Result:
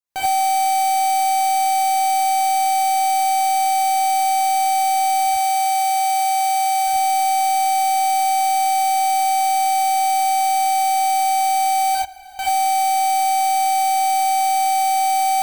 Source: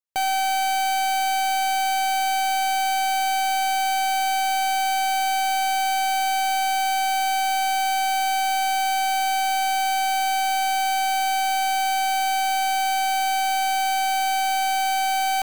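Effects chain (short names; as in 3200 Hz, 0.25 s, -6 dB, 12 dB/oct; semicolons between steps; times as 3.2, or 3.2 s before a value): 5.27–6.87 HPF 330 Hz 6 dB/oct; 11.95–12.39 room tone; non-linear reverb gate 0.11 s rising, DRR -7 dB; gain -2 dB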